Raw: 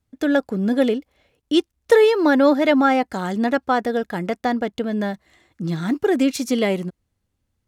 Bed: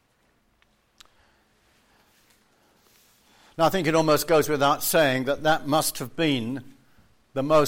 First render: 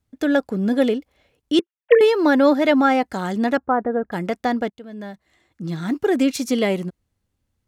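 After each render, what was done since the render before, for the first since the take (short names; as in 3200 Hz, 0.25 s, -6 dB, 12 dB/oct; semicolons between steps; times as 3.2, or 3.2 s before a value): 1.59–2.01 sine-wave speech; 3.57–4.12 LPF 1500 Hz 24 dB/oct; 4.7–6.17 fade in, from -18.5 dB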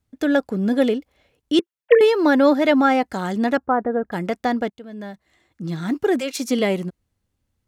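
6.19–6.59 HPF 520 Hz -> 130 Hz 24 dB/oct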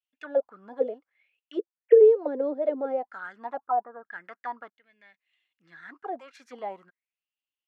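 auto-wah 440–2900 Hz, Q 7.8, down, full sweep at -12 dBFS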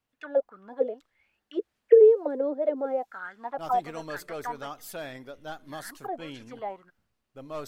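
add bed -18 dB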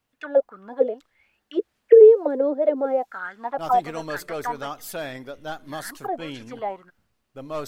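gain +6 dB; limiter -3 dBFS, peak gain reduction 2.5 dB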